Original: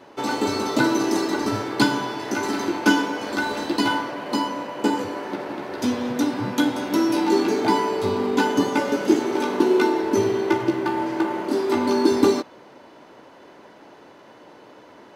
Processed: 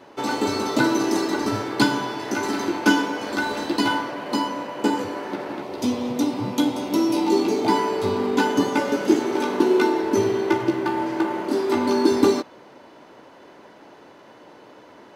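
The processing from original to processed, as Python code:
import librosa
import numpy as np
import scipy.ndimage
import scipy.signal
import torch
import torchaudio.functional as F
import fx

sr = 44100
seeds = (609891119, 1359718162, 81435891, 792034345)

y = fx.peak_eq(x, sr, hz=1600.0, db=-11.0, octaves=0.52, at=(5.62, 7.69))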